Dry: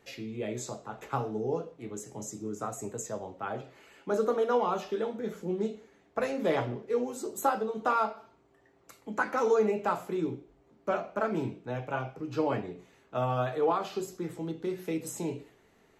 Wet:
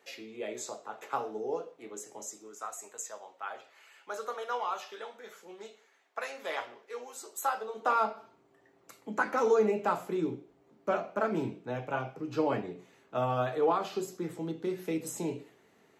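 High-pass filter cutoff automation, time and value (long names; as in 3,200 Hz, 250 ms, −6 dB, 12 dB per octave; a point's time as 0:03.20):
0:02.10 410 Hz
0:02.62 950 Hz
0:07.45 950 Hz
0:07.89 370 Hz
0:08.11 130 Hz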